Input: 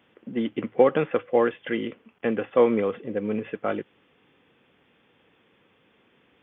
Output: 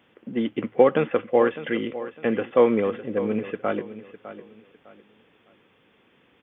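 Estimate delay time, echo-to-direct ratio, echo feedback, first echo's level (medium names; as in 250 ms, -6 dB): 605 ms, -13.5 dB, 29%, -14.0 dB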